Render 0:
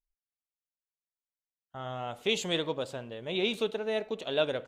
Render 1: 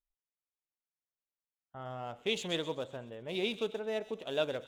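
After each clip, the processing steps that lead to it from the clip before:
adaptive Wiener filter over 9 samples
delay with a high-pass on its return 129 ms, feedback 42%, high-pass 3,700 Hz, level −9.5 dB
level −4 dB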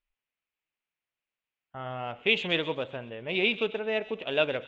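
low-pass with resonance 2,600 Hz, resonance Q 2.8
level +5 dB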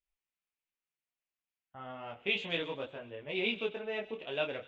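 micro pitch shift up and down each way 11 cents
level −3.5 dB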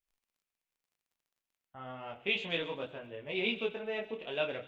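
surface crackle 33 per second −64 dBFS
on a send at −14 dB: convolution reverb RT60 0.70 s, pre-delay 4 ms

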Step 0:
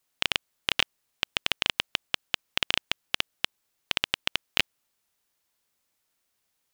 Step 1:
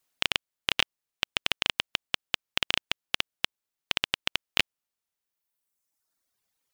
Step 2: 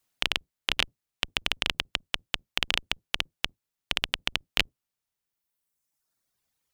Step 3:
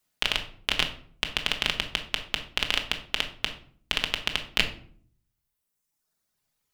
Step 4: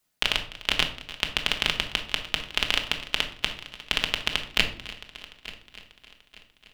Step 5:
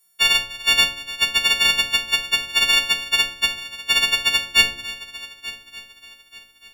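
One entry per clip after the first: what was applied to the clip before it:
reverb reduction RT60 1.6 s
sub-octave generator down 1 octave, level +3 dB
rectangular room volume 650 cubic metres, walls furnished, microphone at 1.4 metres
echo machine with several playback heads 295 ms, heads first and third, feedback 48%, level −18 dB; level +1.5 dB
every partial snapped to a pitch grid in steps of 4 semitones

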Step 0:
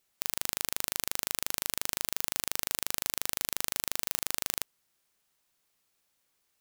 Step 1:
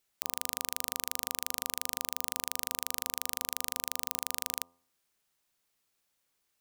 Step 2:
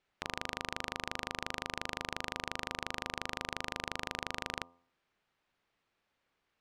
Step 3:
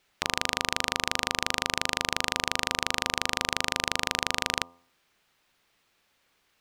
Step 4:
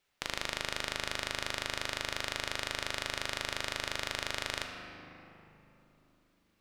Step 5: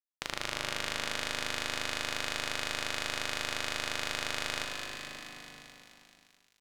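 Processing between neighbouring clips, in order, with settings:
hum removal 86.14 Hz, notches 14; level −2.5 dB
low-pass filter 2,600 Hz 12 dB per octave; level +5 dB
high-shelf EQ 3,100 Hz +10.5 dB; level +7.5 dB
rectangular room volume 170 cubic metres, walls hard, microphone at 0.32 metres; level −8.5 dB
mains-hum notches 50/100 Hz; delay that swaps between a low-pass and a high-pass 108 ms, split 1,400 Hz, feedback 84%, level −3 dB; dead-zone distortion −57 dBFS

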